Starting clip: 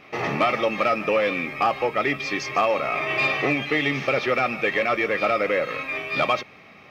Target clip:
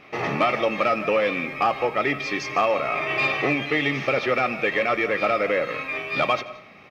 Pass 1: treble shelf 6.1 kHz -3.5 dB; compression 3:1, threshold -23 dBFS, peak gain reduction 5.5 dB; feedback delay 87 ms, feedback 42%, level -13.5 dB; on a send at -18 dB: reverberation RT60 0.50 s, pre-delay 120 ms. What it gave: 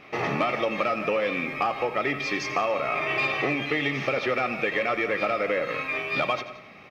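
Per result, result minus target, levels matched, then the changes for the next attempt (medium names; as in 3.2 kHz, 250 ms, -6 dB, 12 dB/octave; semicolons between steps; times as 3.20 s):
compression: peak gain reduction +5.5 dB; echo-to-direct +4 dB
remove: compression 3:1, threshold -23 dBFS, peak gain reduction 5.5 dB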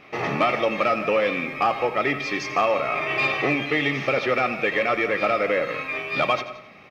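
echo-to-direct +4 dB
change: feedback delay 87 ms, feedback 42%, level -20 dB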